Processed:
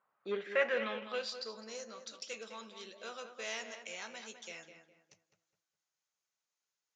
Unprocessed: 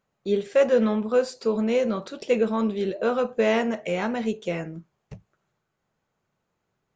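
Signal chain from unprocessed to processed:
gain on a spectral selection 0:01.38–0:02.03, 2,000–4,000 Hz −9 dB
in parallel at −3.5 dB: hard clipping −17 dBFS, distortion −15 dB
on the sum: high-frequency loss of the air 62 metres
on a send: feedback echo with a low-pass in the loop 206 ms, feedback 34%, low-pass 2,300 Hz, level −8 dB
on the sum: band-pass filter sweep 1,100 Hz → 6,200 Hz, 0:00.05–0:01.83
level +1 dB

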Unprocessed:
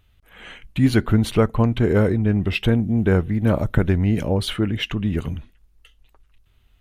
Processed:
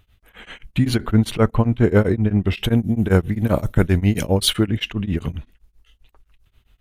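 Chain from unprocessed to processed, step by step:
0:02.63–0:04.66: high-shelf EQ 6,500 Hz → 3,500 Hz +12 dB
tremolo along a rectified sine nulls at 7.6 Hz
level +4 dB

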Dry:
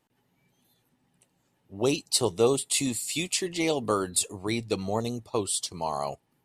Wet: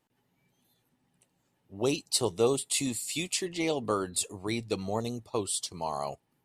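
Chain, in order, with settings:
0:03.45–0:04.19: high-shelf EQ 7,600 Hz −7 dB
level −3 dB

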